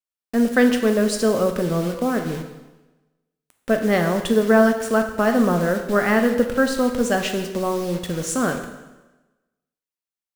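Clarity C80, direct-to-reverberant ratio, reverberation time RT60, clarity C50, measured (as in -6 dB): 10.0 dB, 5.0 dB, 1.1 s, 7.5 dB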